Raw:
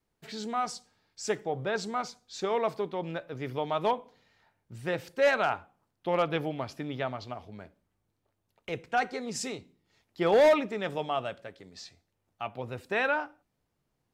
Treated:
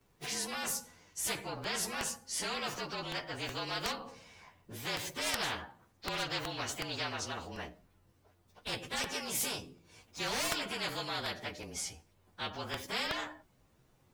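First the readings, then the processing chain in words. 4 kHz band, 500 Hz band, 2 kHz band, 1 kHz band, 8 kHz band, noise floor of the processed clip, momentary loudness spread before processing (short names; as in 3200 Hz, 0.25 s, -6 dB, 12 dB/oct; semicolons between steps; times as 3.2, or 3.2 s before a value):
+5.5 dB, -14.0 dB, -4.0 dB, -8.5 dB, +7.5 dB, -69 dBFS, 18 LU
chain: inharmonic rescaling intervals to 110%; crackling interface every 0.37 s, samples 64, repeat, from 0.9; spectral compressor 4:1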